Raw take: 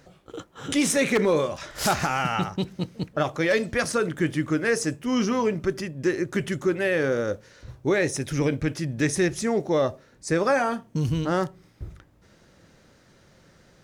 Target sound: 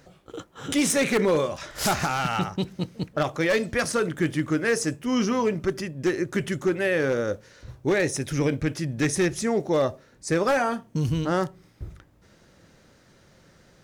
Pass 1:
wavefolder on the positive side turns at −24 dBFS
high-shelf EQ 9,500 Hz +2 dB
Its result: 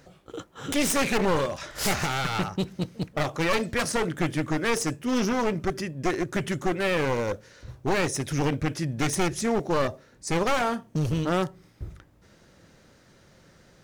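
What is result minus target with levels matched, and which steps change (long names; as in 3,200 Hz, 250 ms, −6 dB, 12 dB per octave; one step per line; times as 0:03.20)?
wavefolder on the positive side: distortion +16 dB
change: wavefolder on the positive side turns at −16.5 dBFS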